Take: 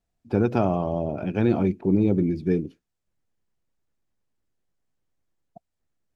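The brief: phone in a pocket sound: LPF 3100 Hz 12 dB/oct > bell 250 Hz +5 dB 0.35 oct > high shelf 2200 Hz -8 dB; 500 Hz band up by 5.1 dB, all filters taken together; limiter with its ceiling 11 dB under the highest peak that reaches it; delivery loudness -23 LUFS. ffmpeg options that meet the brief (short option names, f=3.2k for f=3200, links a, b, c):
-af "equalizer=f=500:t=o:g=7,alimiter=limit=-16dB:level=0:latency=1,lowpass=3.1k,equalizer=f=250:t=o:w=0.35:g=5,highshelf=f=2.2k:g=-8,volume=2.5dB"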